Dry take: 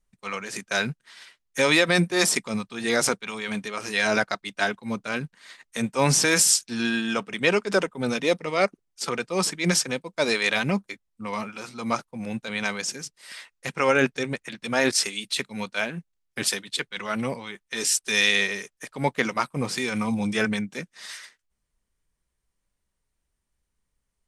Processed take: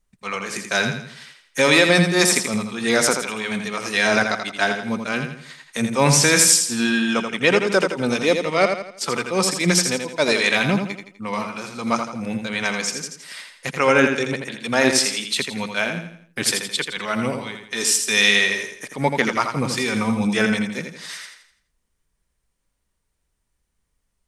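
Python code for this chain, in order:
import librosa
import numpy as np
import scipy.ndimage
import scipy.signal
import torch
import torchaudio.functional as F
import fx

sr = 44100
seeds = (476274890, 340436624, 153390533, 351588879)

y = fx.echo_feedback(x, sr, ms=83, feedback_pct=41, wet_db=-6.5)
y = y * 10.0 ** (4.0 / 20.0)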